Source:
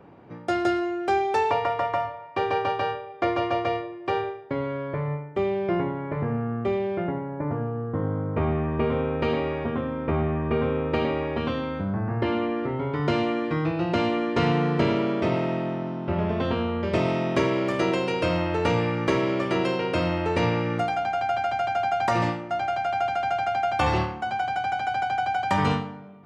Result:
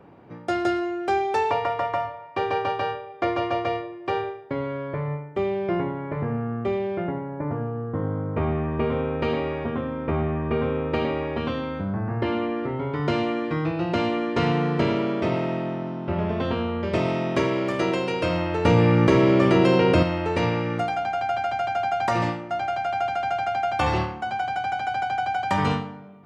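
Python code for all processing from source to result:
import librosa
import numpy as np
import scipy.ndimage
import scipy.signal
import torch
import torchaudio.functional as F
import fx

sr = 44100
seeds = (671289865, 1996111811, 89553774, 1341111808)

y = fx.chain(x, sr, fx.low_shelf(hz=430.0, db=7.0),
    fx.env_flatten(amount_pct=70), at=(18.65, 20.03))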